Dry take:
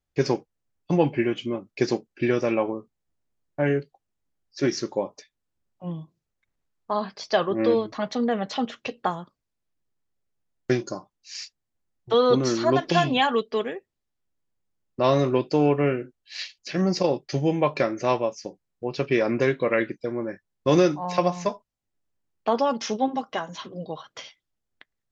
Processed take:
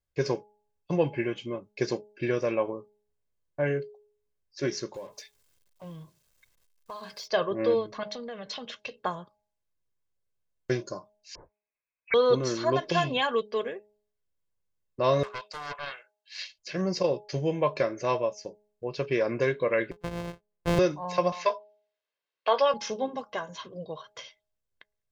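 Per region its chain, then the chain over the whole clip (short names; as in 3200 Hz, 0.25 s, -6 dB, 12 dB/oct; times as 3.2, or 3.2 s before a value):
4.94–7.28 G.711 law mismatch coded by mu + high shelf 2000 Hz +9.5 dB + compressor 2.5:1, threshold -37 dBFS
8.03–8.96 Chebyshev low-pass 4700 Hz + high shelf 2900 Hz +10 dB + compressor, threshold -29 dBFS
11.35–12.14 HPF 170 Hz + inverted band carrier 2700 Hz
15.23–16.37 steep high-pass 740 Hz + Doppler distortion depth 0.43 ms
19.91–20.79 sample sorter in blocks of 256 samples + LPF 2500 Hz 6 dB/oct + dynamic EQ 1300 Hz, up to -5 dB, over -37 dBFS, Q 1.1
21.32–22.74 Chebyshev band-pass 470–4300 Hz + bell 2600 Hz +10 dB 2.8 oct + doubler 18 ms -11 dB
whole clip: comb 1.9 ms, depth 43%; de-hum 209.1 Hz, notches 4; gain -5 dB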